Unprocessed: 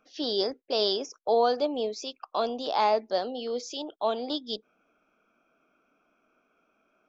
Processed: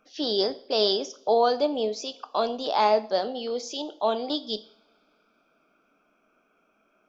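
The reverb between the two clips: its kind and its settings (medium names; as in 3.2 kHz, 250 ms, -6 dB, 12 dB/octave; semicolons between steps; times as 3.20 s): two-slope reverb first 0.5 s, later 2.9 s, from -27 dB, DRR 11.5 dB; trim +2.5 dB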